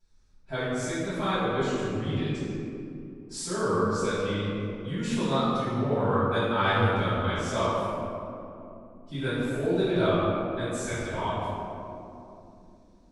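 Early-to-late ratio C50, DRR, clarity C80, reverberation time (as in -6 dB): -4.5 dB, -16.5 dB, -2.5 dB, 2.9 s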